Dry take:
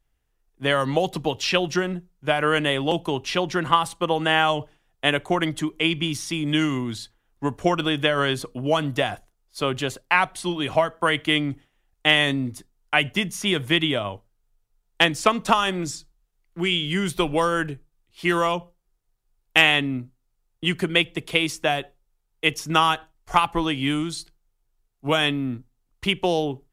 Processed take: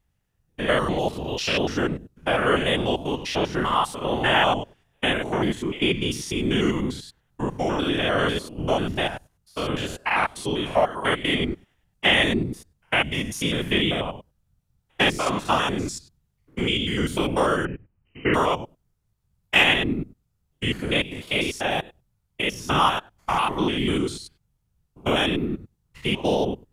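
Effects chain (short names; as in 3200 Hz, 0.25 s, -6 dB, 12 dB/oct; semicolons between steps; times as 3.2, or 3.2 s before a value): stepped spectrum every 0.1 s; whisperiser; 17.65–18.34 brick-wall FIR low-pass 3100 Hz; gain +1.5 dB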